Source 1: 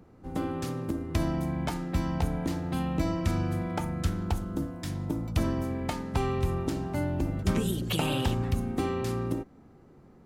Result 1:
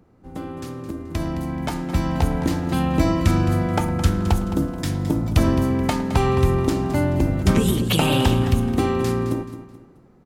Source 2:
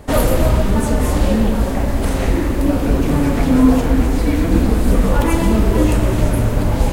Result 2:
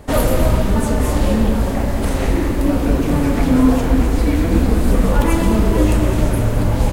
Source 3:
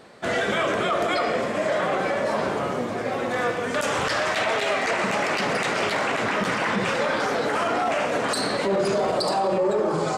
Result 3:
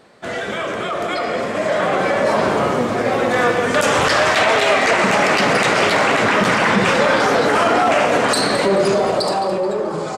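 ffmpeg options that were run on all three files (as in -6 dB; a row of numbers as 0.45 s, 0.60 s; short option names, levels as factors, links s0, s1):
-filter_complex "[0:a]asplit=2[s0][s1];[s1]adelay=107,lowpass=f=2000:p=1,volume=0.15,asplit=2[s2][s3];[s3]adelay=107,lowpass=f=2000:p=1,volume=0.3,asplit=2[s4][s5];[s5]adelay=107,lowpass=f=2000:p=1,volume=0.3[s6];[s2][s4][s6]amix=inputs=3:normalize=0[s7];[s0][s7]amix=inputs=2:normalize=0,dynaudnorm=f=320:g=11:m=3.76,asplit=2[s8][s9];[s9]aecho=0:1:215|430|645:0.237|0.0806|0.0274[s10];[s8][s10]amix=inputs=2:normalize=0,volume=0.891"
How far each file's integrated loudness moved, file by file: +9.5 LU, -0.5 LU, +7.5 LU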